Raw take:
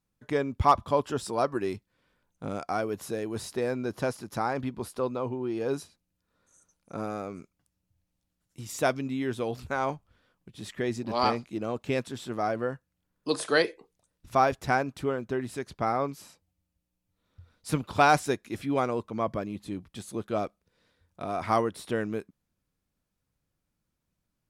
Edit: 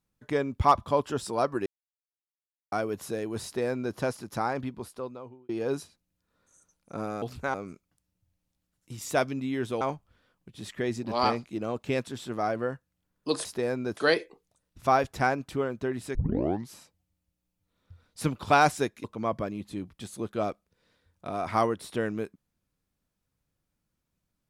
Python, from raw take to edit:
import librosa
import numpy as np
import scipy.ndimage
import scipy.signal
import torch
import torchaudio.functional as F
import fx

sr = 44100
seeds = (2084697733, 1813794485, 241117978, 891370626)

y = fx.edit(x, sr, fx.silence(start_s=1.66, length_s=1.06),
    fx.duplicate(start_s=3.44, length_s=0.52, to_s=13.45),
    fx.fade_out_span(start_s=4.47, length_s=1.02),
    fx.move(start_s=9.49, length_s=0.32, to_s=7.22),
    fx.tape_start(start_s=15.63, length_s=0.56),
    fx.cut(start_s=18.52, length_s=0.47), tone=tone)